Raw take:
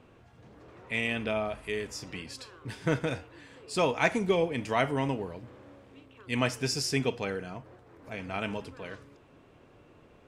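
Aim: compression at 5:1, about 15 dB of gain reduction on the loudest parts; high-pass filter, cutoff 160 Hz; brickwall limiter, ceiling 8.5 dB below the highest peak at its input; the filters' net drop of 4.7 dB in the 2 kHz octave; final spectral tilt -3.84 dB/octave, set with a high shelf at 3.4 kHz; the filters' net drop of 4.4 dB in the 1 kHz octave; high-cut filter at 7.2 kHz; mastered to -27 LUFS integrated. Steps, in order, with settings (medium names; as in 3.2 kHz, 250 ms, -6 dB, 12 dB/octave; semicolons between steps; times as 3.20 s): high-pass 160 Hz; low-pass 7.2 kHz; peaking EQ 1 kHz -5 dB; peaking EQ 2 kHz -7 dB; treble shelf 3.4 kHz +6.5 dB; compression 5:1, threshold -39 dBFS; trim +18 dB; peak limiter -14.5 dBFS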